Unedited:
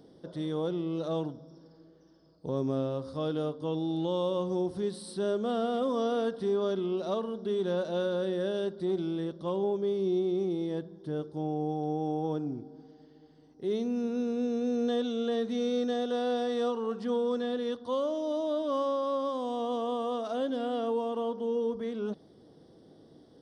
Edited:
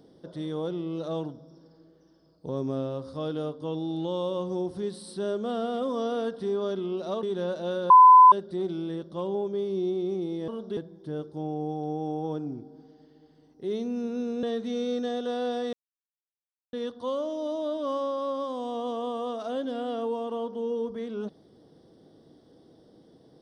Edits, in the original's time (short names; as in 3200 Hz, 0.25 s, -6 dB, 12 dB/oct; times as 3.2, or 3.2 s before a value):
7.23–7.52 move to 10.77
8.19–8.61 bleep 1010 Hz -9 dBFS
14.43–15.28 cut
16.58–17.58 mute